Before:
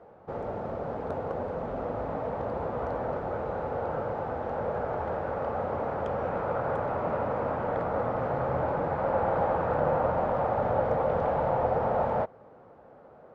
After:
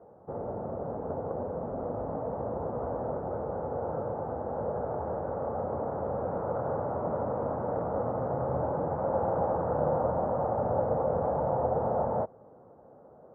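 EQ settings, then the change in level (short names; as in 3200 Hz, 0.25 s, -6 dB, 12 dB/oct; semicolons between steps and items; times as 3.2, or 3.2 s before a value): HPF 61 Hz; Bessel low-pass 840 Hz, order 4; 0.0 dB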